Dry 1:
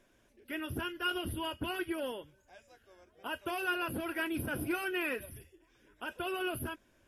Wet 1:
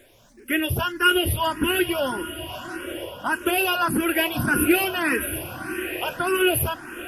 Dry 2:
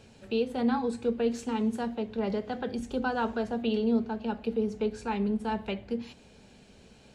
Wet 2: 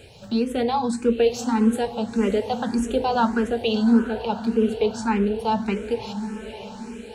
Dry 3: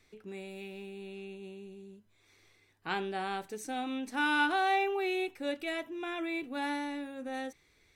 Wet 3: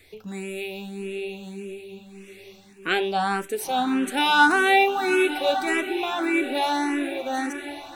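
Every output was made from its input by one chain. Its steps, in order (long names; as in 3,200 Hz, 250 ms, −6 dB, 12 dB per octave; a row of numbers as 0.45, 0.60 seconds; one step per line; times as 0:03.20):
high-shelf EQ 6,100 Hz +7 dB
feedback delay with all-pass diffusion 947 ms, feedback 42%, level −11 dB
frequency shifter mixed with the dry sound +1.7 Hz
loudness normalisation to −23 LKFS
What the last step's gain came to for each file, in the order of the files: +16.5, +10.5, +13.5 decibels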